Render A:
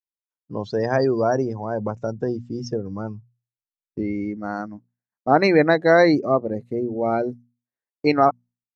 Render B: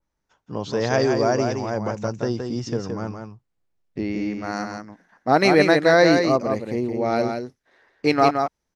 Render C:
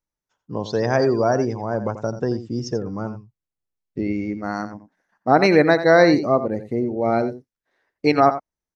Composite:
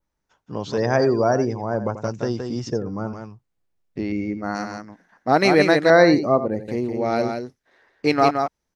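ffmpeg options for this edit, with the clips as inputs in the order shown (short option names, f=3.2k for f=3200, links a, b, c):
-filter_complex "[2:a]asplit=4[a][b][c][d];[1:a]asplit=5[e][f][g][h][i];[e]atrim=end=0.782[j];[a]atrim=start=0.778:end=2.042[k];[f]atrim=start=2.038:end=2.702[l];[b]atrim=start=2.698:end=3.132[m];[g]atrim=start=3.128:end=4.122[n];[c]atrim=start=4.118:end=4.552[o];[h]atrim=start=4.548:end=5.902[p];[d]atrim=start=5.898:end=6.682[q];[i]atrim=start=6.678[r];[j][k]acrossfade=d=0.004:c1=hsin:c2=hsin[s];[s][l]acrossfade=d=0.004:c1=hsin:c2=hsin[t];[t][m]acrossfade=d=0.004:c1=hsin:c2=hsin[u];[u][n]acrossfade=d=0.004:c1=hsin:c2=hsin[v];[v][o]acrossfade=d=0.004:c1=hsin:c2=hsin[w];[w][p]acrossfade=d=0.004:c1=hsin:c2=hsin[x];[x][q]acrossfade=d=0.004:c1=hsin:c2=hsin[y];[y][r]acrossfade=d=0.004:c1=hsin:c2=hsin"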